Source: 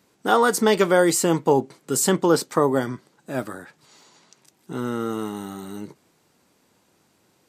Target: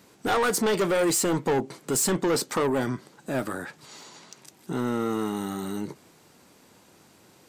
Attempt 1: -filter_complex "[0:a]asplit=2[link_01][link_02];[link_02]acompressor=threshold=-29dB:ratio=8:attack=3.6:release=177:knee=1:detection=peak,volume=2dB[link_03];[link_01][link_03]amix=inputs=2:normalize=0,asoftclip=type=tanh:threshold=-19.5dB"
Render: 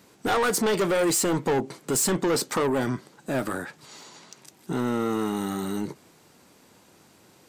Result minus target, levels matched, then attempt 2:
downward compressor: peak gain reduction −7 dB
-filter_complex "[0:a]asplit=2[link_01][link_02];[link_02]acompressor=threshold=-37dB:ratio=8:attack=3.6:release=177:knee=1:detection=peak,volume=2dB[link_03];[link_01][link_03]amix=inputs=2:normalize=0,asoftclip=type=tanh:threshold=-19.5dB"

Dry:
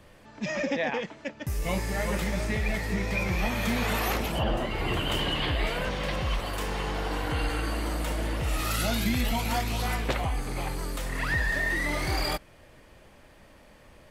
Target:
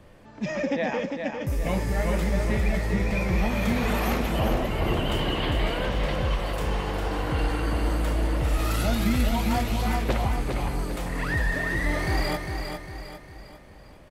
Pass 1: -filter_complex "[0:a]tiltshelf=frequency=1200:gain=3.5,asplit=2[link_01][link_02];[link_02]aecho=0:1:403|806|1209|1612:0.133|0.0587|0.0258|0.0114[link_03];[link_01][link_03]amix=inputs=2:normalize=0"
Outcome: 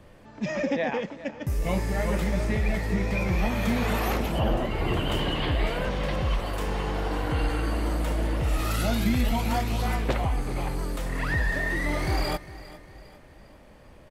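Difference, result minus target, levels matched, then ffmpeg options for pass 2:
echo-to-direct −11.5 dB
-filter_complex "[0:a]tiltshelf=frequency=1200:gain=3.5,asplit=2[link_01][link_02];[link_02]aecho=0:1:403|806|1209|1612|2015:0.501|0.221|0.097|0.0427|0.0188[link_03];[link_01][link_03]amix=inputs=2:normalize=0"

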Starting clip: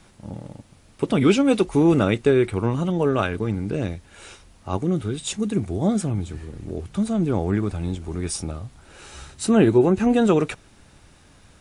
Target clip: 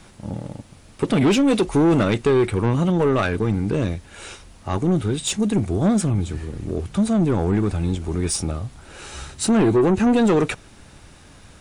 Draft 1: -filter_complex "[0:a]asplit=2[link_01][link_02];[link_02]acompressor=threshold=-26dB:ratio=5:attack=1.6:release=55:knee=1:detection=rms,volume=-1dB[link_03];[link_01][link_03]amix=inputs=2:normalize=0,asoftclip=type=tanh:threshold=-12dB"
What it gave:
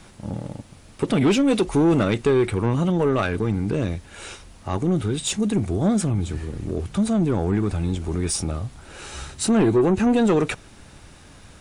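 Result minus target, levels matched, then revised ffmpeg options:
downward compressor: peak gain reduction +9 dB
-filter_complex "[0:a]asplit=2[link_01][link_02];[link_02]acompressor=threshold=-14.5dB:ratio=5:attack=1.6:release=55:knee=1:detection=rms,volume=-1dB[link_03];[link_01][link_03]amix=inputs=2:normalize=0,asoftclip=type=tanh:threshold=-12dB"

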